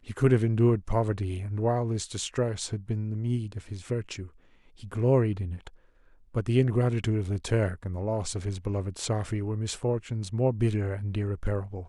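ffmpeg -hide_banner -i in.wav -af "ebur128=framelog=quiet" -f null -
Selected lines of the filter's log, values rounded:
Integrated loudness:
  I:         -28.6 LUFS
  Threshold: -39.1 LUFS
Loudness range:
  LRA:         3.5 LU
  Threshold: -49.7 LUFS
  LRA low:   -31.4 LUFS
  LRA high:  -27.9 LUFS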